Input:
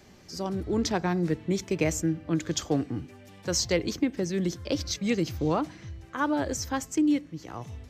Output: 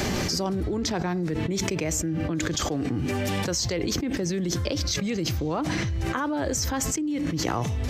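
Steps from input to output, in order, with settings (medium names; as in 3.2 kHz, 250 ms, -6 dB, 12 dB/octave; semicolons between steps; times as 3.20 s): level flattener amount 100%; trim -6 dB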